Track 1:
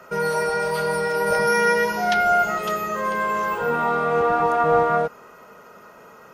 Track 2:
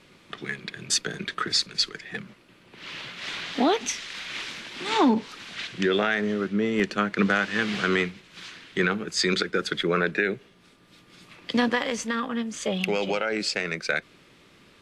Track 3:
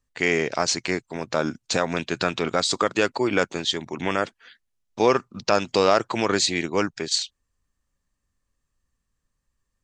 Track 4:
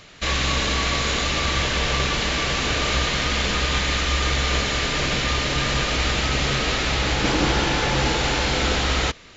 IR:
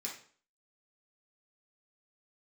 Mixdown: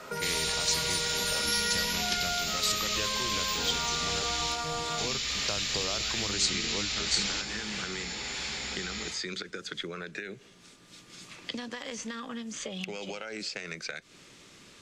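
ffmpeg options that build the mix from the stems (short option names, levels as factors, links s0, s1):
-filter_complex "[0:a]volume=0.841,asplit=2[s0][s1];[s1]volume=0.473[s2];[1:a]acompressor=threshold=0.0282:ratio=6,equalizer=f=6800:t=o:w=1.1:g=12.5,acrossover=split=3800[s3][s4];[s4]acompressor=threshold=0.00708:ratio=4:attack=1:release=60[s5];[s3][s5]amix=inputs=2:normalize=0,volume=0.944[s6];[2:a]volume=0.596,asplit=2[s7][s8];[3:a]tiltshelf=f=1400:g=-5.5,volume=0.299,asplit=2[s9][s10];[s10]volume=0.596[s11];[s8]apad=whole_len=412859[s12];[s9][s12]sidechaingate=range=0.0224:threshold=0.00224:ratio=16:detection=peak[s13];[4:a]atrim=start_sample=2205[s14];[s2][s11]amix=inputs=2:normalize=0[s15];[s15][s14]afir=irnorm=-1:irlink=0[s16];[s0][s6][s7][s13][s16]amix=inputs=5:normalize=0,acrossover=split=130|3000[s17][s18][s19];[s18]acompressor=threshold=0.0158:ratio=5[s20];[s17][s20][s19]amix=inputs=3:normalize=0"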